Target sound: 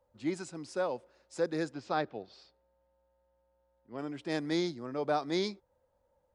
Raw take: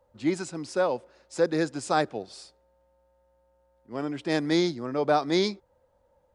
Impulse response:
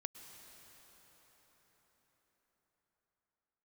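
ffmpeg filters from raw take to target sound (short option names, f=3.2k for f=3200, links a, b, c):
-filter_complex "[0:a]asplit=3[a][b][c];[a]afade=t=out:st=1.72:d=0.02[d];[b]lowpass=f=4.6k:w=0.5412,lowpass=f=4.6k:w=1.3066,afade=t=in:st=1.72:d=0.02,afade=t=out:st=3.97:d=0.02[e];[c]afade=t=in:st=3.97:d=0.02[f];[d][e][f]amix=inputs=3:normalize=0,volume=-7.5dB"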